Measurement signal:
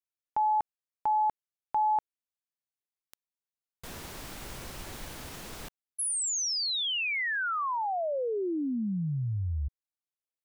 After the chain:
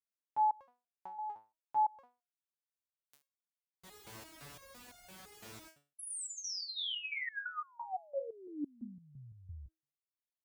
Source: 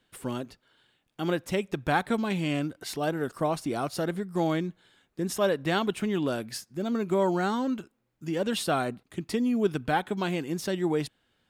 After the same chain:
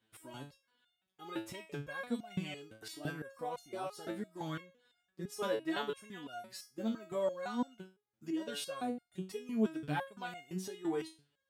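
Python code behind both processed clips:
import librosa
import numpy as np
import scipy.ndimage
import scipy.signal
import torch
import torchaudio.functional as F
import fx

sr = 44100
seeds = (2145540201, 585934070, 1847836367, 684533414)

y = scipy.signal.sosfilt(scipy.signal.butter(2, 59.0, 'highpass', fs=sr, output='sos'), x)
y = fx.resonator_held(y, sr, hz=5.9, low_hz=110.0, high_hz=710.0)
y = y * 10.0 ** (2.5 / 20.0)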